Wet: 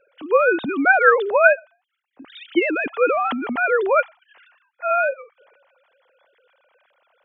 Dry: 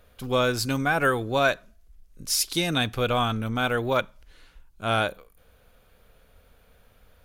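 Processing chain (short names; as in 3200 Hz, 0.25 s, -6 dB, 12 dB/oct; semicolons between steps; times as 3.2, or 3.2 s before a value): sine-wave speech; transient shaper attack +3 dB, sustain +8 dB; gain +4.5 dB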